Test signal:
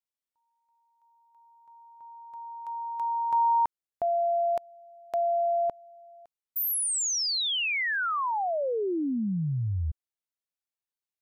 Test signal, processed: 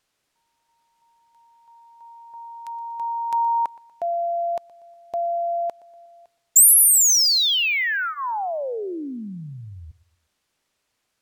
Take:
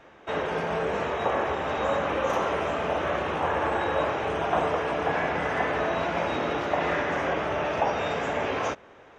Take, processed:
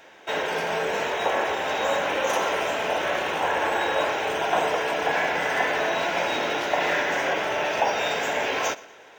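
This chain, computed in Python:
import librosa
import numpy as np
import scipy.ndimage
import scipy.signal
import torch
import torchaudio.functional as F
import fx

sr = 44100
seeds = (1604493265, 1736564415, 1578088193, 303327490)

y = fx.riaa(x, sr, side='recording')
y = fx.notch(y, sr, hz=1200.0, q=5.6)
y = fx.echo_feedback(y, sr, ms=120, feedback_pct=44, wet_db=-20.5)
y = np.interp(np.arange(len(y)), np.arange(len(y))[::2], y[::2])
y = y * 10.0 ** (3.5 / 20.0)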